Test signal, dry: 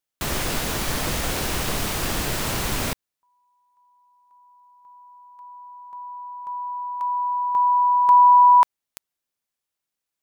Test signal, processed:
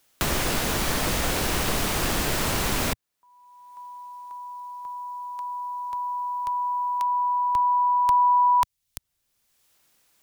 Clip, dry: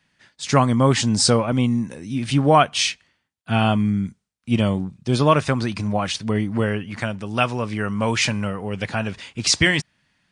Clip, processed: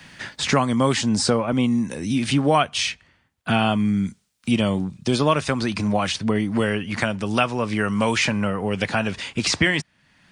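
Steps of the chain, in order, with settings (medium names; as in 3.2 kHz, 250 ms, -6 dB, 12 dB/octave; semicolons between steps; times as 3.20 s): dynamic bell 120 Hz, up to -6 dB, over -35 dBFS, Q 2.3; three bands compressed up and down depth 70%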